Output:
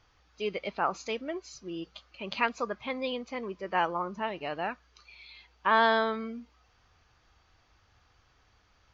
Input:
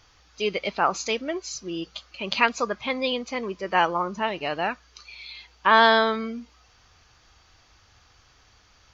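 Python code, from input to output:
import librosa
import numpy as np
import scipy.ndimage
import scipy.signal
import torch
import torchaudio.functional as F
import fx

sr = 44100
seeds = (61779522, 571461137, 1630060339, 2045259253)

y = fx.high_shelf(x, sr, hz=4500.0, db=-12.0)
y = y * 10.0 ** (-6.0 / 20.0)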